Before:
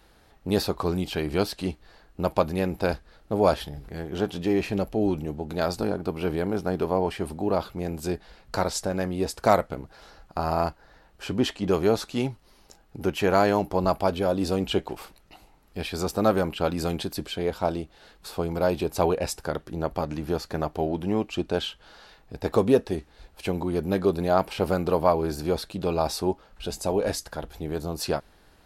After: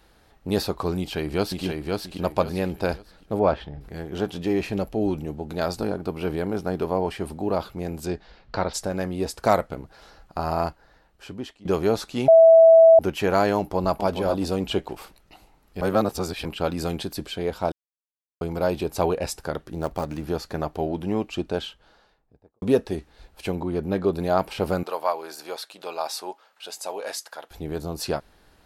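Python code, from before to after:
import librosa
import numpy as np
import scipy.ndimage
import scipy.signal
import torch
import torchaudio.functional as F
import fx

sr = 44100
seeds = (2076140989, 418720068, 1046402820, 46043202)

y = fx.echo_throw(x, sr, start_s=0.98, length_s=0.66, ms=530, feedback_pct=30, wet_db=-3.0)
y = fx.lowpass(y, sr, hz=2500.0, slope=12, at=(3.39, 3.81))
y = fx.lowpass(y, sr, hz=fx.line((8.05, 7900.0), (8.73, 3800.0)), slope=24, at=(8.05, 8.73), fade=0.02)
y = fx.echo_throw(y, sr, start_s=13.57, length_s=0.45, ms=420, feedback_pct=10, wet_db=-8.0)
y = fx.dead_time(y, sr, dead_ms=0.059, at=(19.69, 20.24))
y = fx.studio_fade_out(y, sr, start_s=21.33, length_s=1.29)
y = fx.high_shelf(y, sr, hz=4700.0, db=-9.5, at=(23.55, 24.15))
y = fx.highpass(y, sr, hz=730.0, slope=12, at=(24.83, 27.51))
y = fx.edit(y, sr, fx.fade_out_to(start_s=10.64, length_s=1.01, floor_db=-21.5),
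    fx.bleep(start_s=12.28, length_s=0.71, hz=655.0, db=-8.0),
    fx.reverse_span(start_s=15.81, length_s=0.64),
    fx.silence(start_s=17.72, length_s=0.69), tone=tone)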